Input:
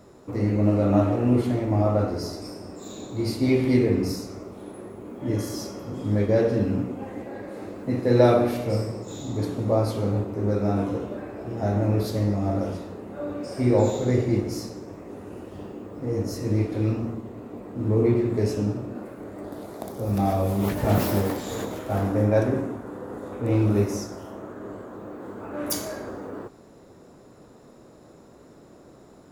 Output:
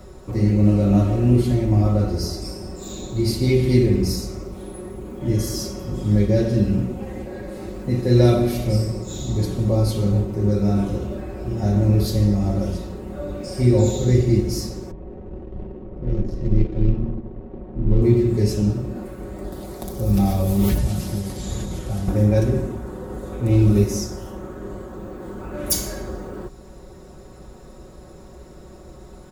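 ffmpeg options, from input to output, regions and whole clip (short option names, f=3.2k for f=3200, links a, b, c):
-filter_complex "[0:a]asettb=1/sr,asplit=3[a][b][c];[a]atrim=end=14.914[d];[b]atrim=start=14.91:end=18.02,asetpts=PTS-STARTPTS,afade=t=in:d=0.004:c=qsin,afade=t=out:st=3.106:d=0.004:c=qsin,equalizer=f=1.4k:w=2.3:g=-7.5,adynamicsmooth=sensitivity=4:basefreq=790,tremolo=f=80:d=0.621[e];[c]atrim=start=18.016[f];[d][e]acrossfade=d=0.004:c1=hsin:c2=qsin[g];[g][f]acrossfade=d=0.004:c1=qsin:c2=hsin,asettb=1/sr,asplit=3[h][i][j];[h]atrim=end=20.784[k];[i]atrim=start=20.78:end=22.08,asetpts=PTS-STARTPTS,afade=t=in:d=0.004:c=qsin,afade=t=out:st=1.296:d=0.004:c=qsin,lowpass=f=11k:w=0.5412,lowpass=f=11k:w=1.3066,equalizer=f=160:t=o:w=1.4:g=6,acrossover=split=130|3400[l][m][n];[l]acompressor=threshold=-35dB:ratio=4[o];[m]acompressor=threshold=-35dB:ratio=4[p];[n]acompressor=threshold=-46dB:ratio=4[q];[o][p][q]amix=inputs=3:normalize=0[r];[j]atrim=start=22.076[s];[k][r]acrossfade=d=0.004:c1=hsin:c2=qsin[t];[t][s]acrossfade=d=0.004:c1=qsin:c2=hsin,lowshelf=f=110:t=q:w=1.5:g=13,aecho=1:1:5.4:0.75,acrossover=split=340|3000[u][v][w];[v]acompressor=threshold=-57dB:ratio=1.5[x];[u][x][w]amix=inputs=3:normalize=0,volume=6dB"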